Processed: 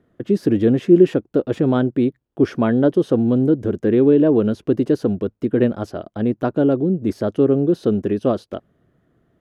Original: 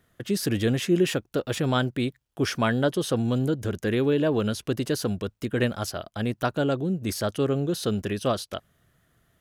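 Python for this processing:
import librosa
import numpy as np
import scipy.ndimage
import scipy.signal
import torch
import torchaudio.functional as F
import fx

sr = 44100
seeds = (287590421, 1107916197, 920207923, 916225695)

y = fx.lowpass(x, sr, hz=1500.0, slope=6)
y = fx.peak_eq(y, sr, hz=320.0, db=12.5, octaves=2.0)
y = y * 10.0 ** (-1.0 / 20.0)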